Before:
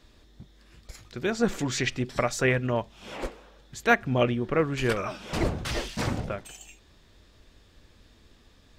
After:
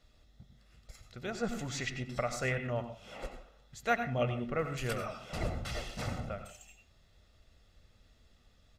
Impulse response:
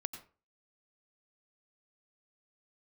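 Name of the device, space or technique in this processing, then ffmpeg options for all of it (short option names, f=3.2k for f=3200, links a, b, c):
microphone above a desk: -filter_complex "[0:a]aecho=1:1:1.5:0.51[a];[1:a]atrim=start_sample=2205[b];[a][b]afir=irnorm=-1:irlink=0,asettb=1/sr,asplit=3[c][d][e];[c]atrim=end=4.594[f];[d]atrim=start=4.59:end=5.06,asetpts=PTS-STARTPTS,afade=t=in:d=0.004:c=qsin,afade=t=out:st=0.466:d=0.004:c=qsin,highshelf=f=7.5k:g=10.5[g];[e]atrim=start=5.056[h];[f][g]acrossfade=d=0.004:c1=hsin:c2=qsin[i];[i][h]acrossfade=d=0.004:c1=qsin:c2=hsin,volume=-8.5dB"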